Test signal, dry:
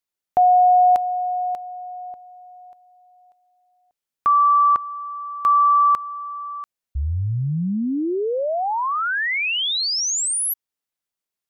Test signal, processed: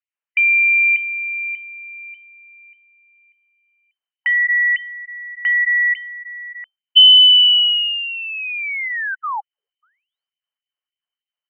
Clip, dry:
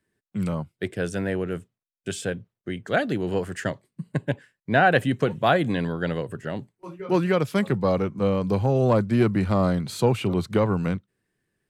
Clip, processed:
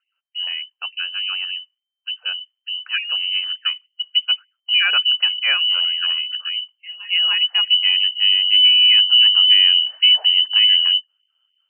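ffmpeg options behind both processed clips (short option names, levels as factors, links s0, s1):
-af "asubboost=boost=8.5:cutoff=130,lowpass=f=2600:t=q:w=0.5098,lowpass=f=2600:t=q:w=0.6013,lowpass=f=2600:t=q:w=0.9,lowpass=f=2600:t=q:w=2.563,afreqshift=-3100,afftfilt=real='re*gte(b*sr/1024,390*pow(2000/390,0.5+0.5*sin(2*PI*3.4*pts/sr)))':imag='im*gte(b*sr/1024,390*pow(2000/390,0.5+0.5*sin(2*PI*3.4*pts/sr)))':win_size=1024:overlap=0.75"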